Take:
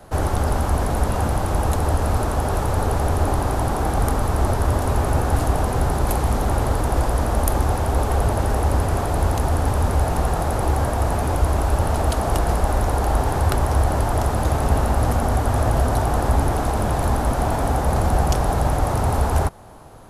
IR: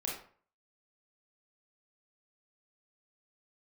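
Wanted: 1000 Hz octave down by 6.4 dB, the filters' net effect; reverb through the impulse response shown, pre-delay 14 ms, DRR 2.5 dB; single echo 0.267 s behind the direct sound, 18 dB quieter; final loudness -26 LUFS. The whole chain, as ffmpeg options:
-filter_complex "[0:a]equalizer=f=1k:t=o:g=-9,aecho=1:1:267:0.126,asplit=2[a][b];[1:a]atrim=start_sample=2205,adelay=14[c];[b][c]afir=irnorm=-1:irlink=0,volume=-4.5dB[d];[a][d]amix=inputs=2:normalize=0,volume=-6.5dB"

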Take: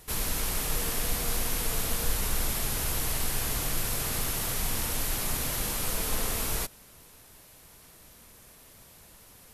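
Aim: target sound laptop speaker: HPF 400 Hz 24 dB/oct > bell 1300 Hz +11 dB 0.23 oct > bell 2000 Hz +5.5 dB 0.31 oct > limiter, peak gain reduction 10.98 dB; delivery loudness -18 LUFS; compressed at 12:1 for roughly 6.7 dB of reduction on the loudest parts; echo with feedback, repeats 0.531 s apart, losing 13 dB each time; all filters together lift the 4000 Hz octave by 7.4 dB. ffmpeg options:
-af "equalizer=f=4k:t=o:g=9,acompressor=threshold=-28dB:ratio=12,highpass=f=400:w=0.5412,highpass=f=400:w=1.3066,equalizer=f=1.3k:t=o:w=0.23:g=11,equalizer=f=2k:t=o:w=0.31:g=5.5,aecho=1:1:531|1062|1593:0.224|0.0493|0.0108,volume=19.5dB,alimiter=limit=-10.5dB:level=0:latency=1"

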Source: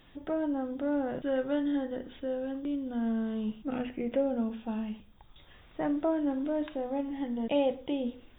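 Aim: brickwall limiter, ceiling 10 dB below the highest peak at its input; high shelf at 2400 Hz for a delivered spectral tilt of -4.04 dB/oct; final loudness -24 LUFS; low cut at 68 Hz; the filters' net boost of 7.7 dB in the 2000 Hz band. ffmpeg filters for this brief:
-af "highpass=68,equalizer=f=2k:t=o:g=8,highshelf=f=2.4k:g=5,volume=11dB,alimiter=limit=-15.5dB:level=0:latency=1"

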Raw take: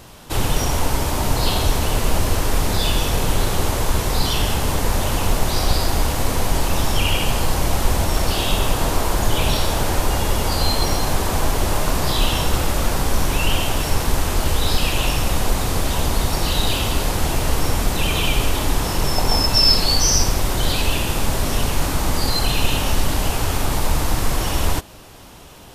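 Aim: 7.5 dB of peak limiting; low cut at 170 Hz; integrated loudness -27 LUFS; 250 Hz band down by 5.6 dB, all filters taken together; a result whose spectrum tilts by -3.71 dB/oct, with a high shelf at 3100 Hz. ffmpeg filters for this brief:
-af "highpass=170,equalizer=f=250:t=o:g=-6,highshelf=f=3.1k:g=-7,volume=-1dB,alimiter=limit=-17dB:level=0:latency=1"

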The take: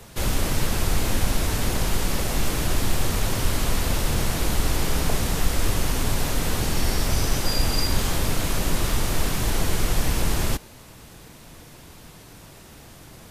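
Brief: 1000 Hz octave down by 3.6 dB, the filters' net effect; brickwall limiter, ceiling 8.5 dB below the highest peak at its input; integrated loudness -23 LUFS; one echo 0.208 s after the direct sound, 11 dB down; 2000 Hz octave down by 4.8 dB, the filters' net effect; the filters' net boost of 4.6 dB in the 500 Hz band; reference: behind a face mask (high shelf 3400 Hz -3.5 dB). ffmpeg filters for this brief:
-af "equalizer=f=500:t=o:g=7.5,equalizer=f=1k:t=o:g=-6.5,equalizer=f=2k:t=o:g=-3.5,alimiter=limit=-15.5dB:level=0:latency=1,highshelf=f=3.4k:g=-3.5,aecho=1:1:208:0.282,volume=5dB"

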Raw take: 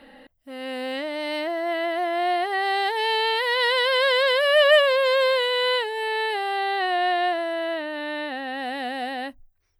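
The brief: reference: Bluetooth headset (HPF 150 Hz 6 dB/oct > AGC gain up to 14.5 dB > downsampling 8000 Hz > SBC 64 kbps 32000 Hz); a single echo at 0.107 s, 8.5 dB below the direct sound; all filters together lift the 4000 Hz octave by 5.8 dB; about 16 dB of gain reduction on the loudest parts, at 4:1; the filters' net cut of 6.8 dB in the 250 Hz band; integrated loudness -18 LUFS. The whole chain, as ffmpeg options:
-af "equalizer=f=250:t=o:g=-9,equalizer=f=4k:t=o:g=8,acompressor=threshold=-32dB:ratio=4,highpass=f=150:p=1,aecho=1:1:107:0.376,dynaudnorm=m=14.5dB,aresample=8000,aresample=44100,volume=14.5dB" -ar 32000 -c:a sbc -b:a 64k

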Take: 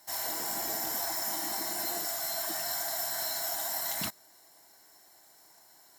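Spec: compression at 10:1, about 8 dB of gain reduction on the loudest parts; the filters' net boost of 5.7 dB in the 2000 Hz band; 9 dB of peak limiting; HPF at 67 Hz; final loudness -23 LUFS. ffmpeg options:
-af "highpass=67,equalizer=f=2k:t=o:g=7,acompressor=threshold=-37dB:ratio=10,volume=19.5dB,alimiter=limit=-16dB:level=0:latency=1"

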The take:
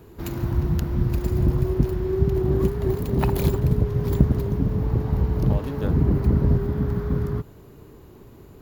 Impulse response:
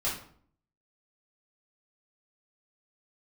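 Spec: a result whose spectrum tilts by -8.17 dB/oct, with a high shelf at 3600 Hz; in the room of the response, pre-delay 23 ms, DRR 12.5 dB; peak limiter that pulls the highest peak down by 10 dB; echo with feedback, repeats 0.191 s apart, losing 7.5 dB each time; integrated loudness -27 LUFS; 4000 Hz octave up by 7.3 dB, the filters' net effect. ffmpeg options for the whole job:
-filter_complex "[0:a]highshelf=f=3.6k:g=3,equalizer=f=4k:t=o:g=7,alimiter=limit=-13.5dB:level=0:latency=1,aecho=1:1:191|382|573|764|955:0.422|0.177|0.0744|0.0312|0.0131,asplit=2[a][b];[1:a]atrim=start_sample=2205,adelay=23[c];[b][c]afir=irnorm=-1:irlink=0,volume=-19.5dB[d];[a][d]amix=inputs=2:normalize=0,volume=-3.5dB"

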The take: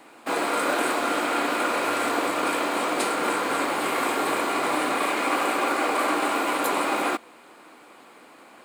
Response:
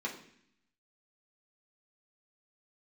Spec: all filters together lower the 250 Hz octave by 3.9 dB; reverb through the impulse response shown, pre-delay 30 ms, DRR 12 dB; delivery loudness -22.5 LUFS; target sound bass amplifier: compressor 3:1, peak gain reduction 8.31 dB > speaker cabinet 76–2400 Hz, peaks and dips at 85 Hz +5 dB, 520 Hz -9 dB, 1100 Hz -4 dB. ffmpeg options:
-filter_complex "[0:a]equalizer=f=250:t=o:g=-4.5,asplit=2[a][b];[1:a]atrim=start_sample=2205,adelay=30[c];[b][c]afir=irnorm=-1:irlink=0,volume=-15.5dB[d];[a][d]amix=inputs=2:normalize=0,acompressor=threshold=-31dB:ratio=3,highpass=f=76:w=0.5412,highpass=f=76:w=1.3066,equalizer=f=85:t=q:w=4:g=5,equalizer=f=520:t=q:w=4:g=-9,equalizer=f=1.1k:t=q:w=4:g=-4,lowpass=f=2.4k:w=0.5412,lowpass=f=2.4k:w=1.3066,volume=11.5dB"

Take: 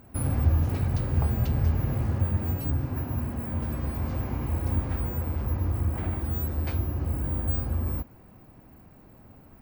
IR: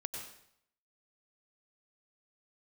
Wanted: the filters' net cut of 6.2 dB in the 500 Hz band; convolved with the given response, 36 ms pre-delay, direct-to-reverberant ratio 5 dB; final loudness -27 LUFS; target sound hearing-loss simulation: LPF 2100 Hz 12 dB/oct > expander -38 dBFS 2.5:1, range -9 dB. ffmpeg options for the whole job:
-filter_complex "[0:a]equalizer=f=500:t=o:g=-8.5,asplit=2[a][b];[1:a]atrim=start_sample=2205,adelay=36[c];[b][c]afir=irnorm=-1:irlink=0,volume=-5dB[d];[a][d]amix=inputs=2:normalize=0,lowpass=2.1k,agate=range=-9dB:threshold=-38dB:ratio=2.5,volume=0.5dB"

